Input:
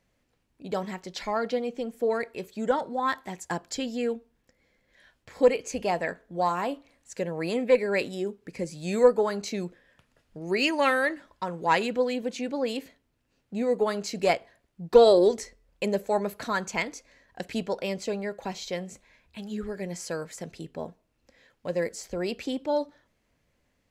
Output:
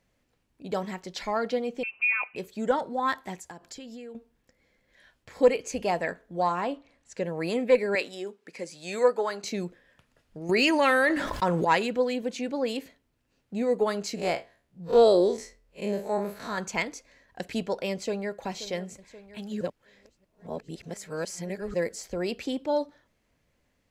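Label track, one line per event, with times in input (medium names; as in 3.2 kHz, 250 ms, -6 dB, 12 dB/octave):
1.830000	2.360000	frequency inversion carrier 2.9 kHz
3.370000	4.150000	compression 8:1, threshold -39 dBFS
6.420000	7.240000	distance through air 57 m
7.950000	9.440000	frequency weighting A
10.490000	11.650000	level flattener amount 70%
14.150000	16.580000	spectral blur width 85 ms
17.920000	18.360000	echo throw 530 ms, feedback 65%, level -14.5 dB
19.610000	21.740000	reverse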